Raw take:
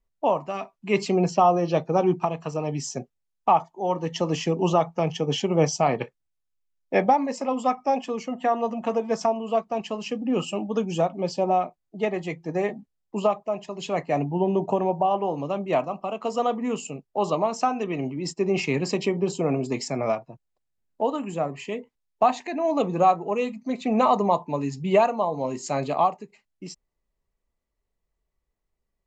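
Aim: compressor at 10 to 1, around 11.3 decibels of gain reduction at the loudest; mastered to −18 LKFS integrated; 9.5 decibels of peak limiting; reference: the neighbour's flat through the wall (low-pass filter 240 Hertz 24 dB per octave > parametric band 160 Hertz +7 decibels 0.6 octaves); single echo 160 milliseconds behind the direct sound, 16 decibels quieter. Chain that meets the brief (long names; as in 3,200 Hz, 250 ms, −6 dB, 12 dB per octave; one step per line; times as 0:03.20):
downward compressor 10 to 1, threshold −25 dBFS
brickwall limiter −22.5 dBFS
low-pass filter 240 Hz 24 dB per octave
parametric band 160 Hz +7 dB 0.6 octaves
single-tap delay 160 ms −16 dB
level +17.5 dB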